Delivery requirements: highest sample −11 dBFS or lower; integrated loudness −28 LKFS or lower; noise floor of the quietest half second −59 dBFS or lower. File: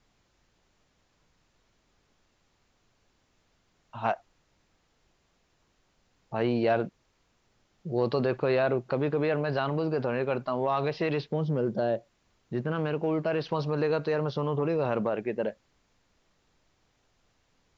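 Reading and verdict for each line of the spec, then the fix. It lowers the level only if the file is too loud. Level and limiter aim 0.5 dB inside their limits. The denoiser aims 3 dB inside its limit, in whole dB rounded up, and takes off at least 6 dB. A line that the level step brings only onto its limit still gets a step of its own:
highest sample −13.5 dBFS: in spec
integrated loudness −29.0 LKFS: in spec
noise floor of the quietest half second −70 dBFS: in spec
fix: no processing needed

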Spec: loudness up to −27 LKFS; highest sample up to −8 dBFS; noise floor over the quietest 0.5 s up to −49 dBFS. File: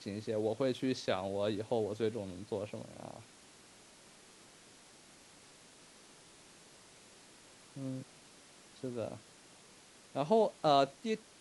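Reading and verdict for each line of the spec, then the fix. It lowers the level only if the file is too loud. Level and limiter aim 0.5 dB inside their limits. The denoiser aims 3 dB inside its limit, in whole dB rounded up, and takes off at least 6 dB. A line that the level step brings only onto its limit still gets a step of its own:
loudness −35.5 LKFS: in spec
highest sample −15.0 dBFS: in spec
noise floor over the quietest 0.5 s −59 dBFS: in spec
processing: no processing needed

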